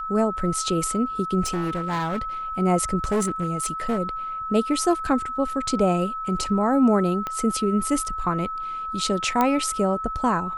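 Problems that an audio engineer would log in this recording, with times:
whine 1.3 kHz -28 dBFS
1.45–2.22 s: clipped -22 dBFS
3.04–3.99 s: clipped -18.5 dBFS
7.27 s: pop -15 dBFS
9.41 s: pop -8 dBFS

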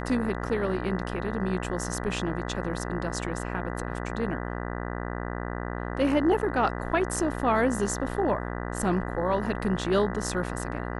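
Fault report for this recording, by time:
buzz 60 Hz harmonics 33 -33 dBFS

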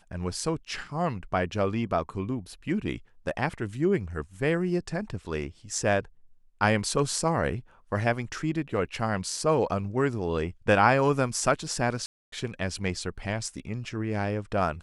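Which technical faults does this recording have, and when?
12.06–12.32 s: dropout 263 ms

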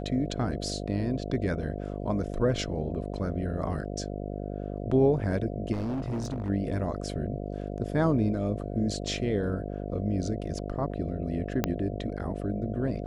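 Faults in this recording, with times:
buzz 50 Hz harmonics 14 -35 dBFS
5.72–6.50 s: clipped -28 dBFS
11.64 s: pop -11 dBFS

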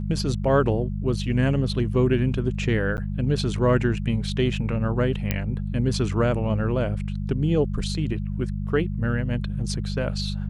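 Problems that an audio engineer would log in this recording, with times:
hum 50 Hz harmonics 4 -28 dBFS
2.97–2.98 s: dropout 9.6 ms
5.31 s: pop -9 dBFS

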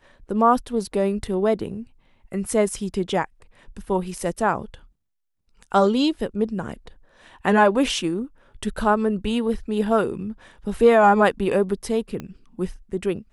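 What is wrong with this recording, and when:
12.20 s: pop -19 dBFS

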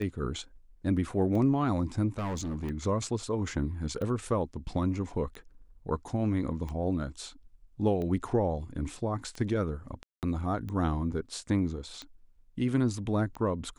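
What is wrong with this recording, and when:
tick 45 rpm -26 dBFS
2.18–2.71 s: clipped -30 dBFS
10.03–10.23 s: dropout 198 ms

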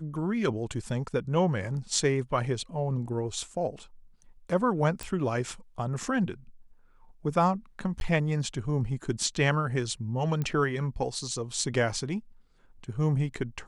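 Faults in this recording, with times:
5.03 s: pop
8.00–8.01 s: dropout 11 ms
10.42 s: pop -19 dBFS

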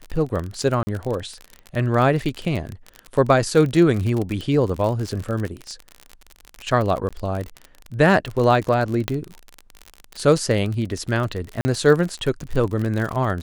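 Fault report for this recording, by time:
crackle 44 per s -25 dBFS
0.83–0.87 s: dropout 40 ms
7.09–7.11 s: dropout 16 ms
9.08 s: pop -7 dBFS
11.61–11.65 s: dropout 40 ms

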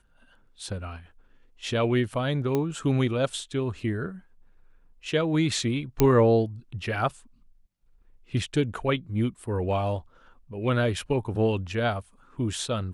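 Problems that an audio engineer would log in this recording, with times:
2.55 s: pop -14 dBFS
6.00 s: pop -6 dBFS

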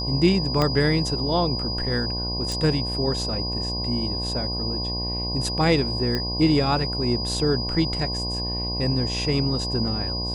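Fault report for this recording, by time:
buzz 60 Hz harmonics 18 -30 dBFS
whine 4.9 kHz -28 dBFS
0.62 s: pop -9 dBFS
2.52 s: pop
6.15 s: pop -12 dBFS

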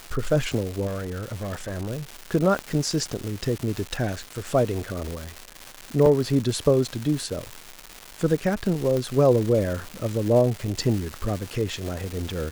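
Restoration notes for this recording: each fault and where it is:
crackle 480 per s -28 dBFS
0.86–1.91 s: clipped -26.5 dBFS
2.59 s: pop -14 dBFS
6.06 s: dropout 2.1 ms
8.97 s: pop -14 dBFS

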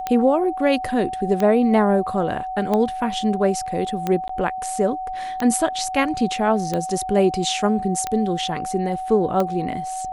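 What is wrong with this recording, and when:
tick 45 rpm -10 dBFS
whine 750 Hz -26 dBFS
4.28–4.29 s: dropout 14 ms

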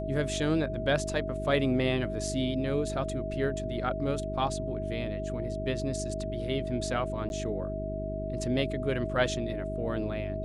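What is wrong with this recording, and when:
hum 50 Hz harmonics 8 -36 dBFS
whine 640 Hz -35 dBFS
7.29–7.30 s: dropout 11 ms

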